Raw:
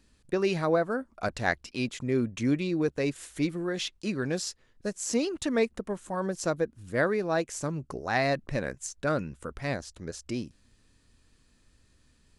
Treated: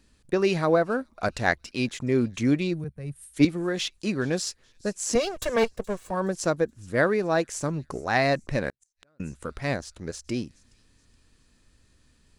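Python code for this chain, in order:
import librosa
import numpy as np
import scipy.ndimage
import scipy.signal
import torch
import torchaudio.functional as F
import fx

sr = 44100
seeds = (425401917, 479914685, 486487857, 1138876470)

p1 = fx.lower_of_two(x, sr, delay_ms=1.8, at=(5.15, 6.11))
p2 = p1 + fx.echo_wet_highpass(p1, sr, ms=422, feedback_pct=41, hz=4000.0, wet_db=-21, dry=0)
p3 = fx.spec_box(p2, sr, start_s=2.73, length_s=0.61, low_hz=210.0, high_hz=8100.0, gain_db=-17)
p4 = fx.gate_flip(p3, sr, shuts_db=-29.0, range_db=-42, at=(8.69, 9.2))
p5 = np.sign(p4) * np.maximum(np.abs(p4) - 10.0 ** (-42.0 / 20.0), 0.0)
p6 = p4 + (p5 * 10.0 ** (-12.0 / 20.0))
p7 = fx.band_widen(p6, sr, depth_pct=70, at=(2.84, 3.45))
y = p7 * 10.0 ** (2.0 / 20.0)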